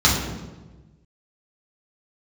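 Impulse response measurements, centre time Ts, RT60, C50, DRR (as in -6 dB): 53 ms, 1.2 s, 3.0 dB, -6.5 dB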